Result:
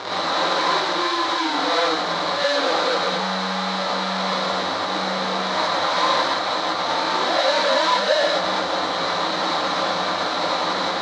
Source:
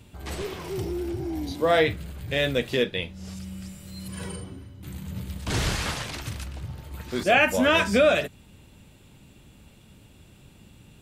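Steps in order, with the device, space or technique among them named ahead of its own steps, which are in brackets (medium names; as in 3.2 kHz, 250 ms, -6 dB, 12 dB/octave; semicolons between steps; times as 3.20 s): high-pass 64 Hz 12 dB/octave; elliptic low-pass 1 kHz; rippled EQ curve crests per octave 1.2, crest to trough 16 dB; home computer beeper (one-bit comparator; cabinet simulation 580–5500 Hz, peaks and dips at 740 Hz +5 dB, 1.2 kHz +4 dB, 2.7 kHz -6 dB, 4 kHz +10 dB); gated-style reverb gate 140 ms rising, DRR -7.5 dB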